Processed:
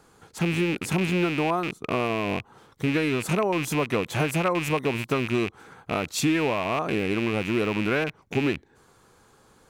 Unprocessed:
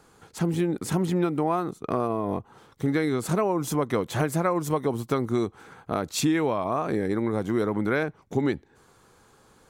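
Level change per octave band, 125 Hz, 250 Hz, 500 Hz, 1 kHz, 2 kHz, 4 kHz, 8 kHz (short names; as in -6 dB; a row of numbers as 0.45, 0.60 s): +0.5, 0.0, 0.0, 0.0, +6.5, +6.0, 0.0 dB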